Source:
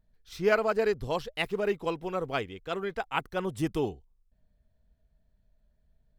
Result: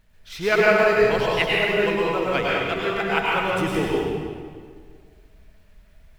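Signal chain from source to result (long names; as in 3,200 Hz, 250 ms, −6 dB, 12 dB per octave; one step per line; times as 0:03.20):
mu-law and A-law mismatch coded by mu
parametric band 2,200 Hz +8 dB 1.4 octaves
convolution reverb RT60 1.9 s, pre-delay 93 ms, DRR −5.5 dB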